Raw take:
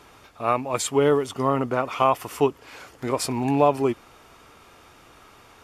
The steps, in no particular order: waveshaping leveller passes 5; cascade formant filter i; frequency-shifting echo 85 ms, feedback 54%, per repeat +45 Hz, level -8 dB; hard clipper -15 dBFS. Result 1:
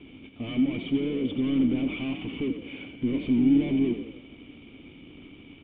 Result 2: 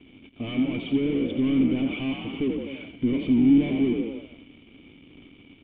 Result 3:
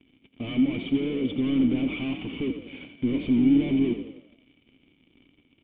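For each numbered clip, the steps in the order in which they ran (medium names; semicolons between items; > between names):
hard clipper > waveshaping leveller > frequency-shifting echo > cascade formant filter; hard clipper > frequency-shifting echo > waveshaping leveller > cascade formant filter; waveshaping leveller > hard clipper > frequency-shifting echo > cascade formant filter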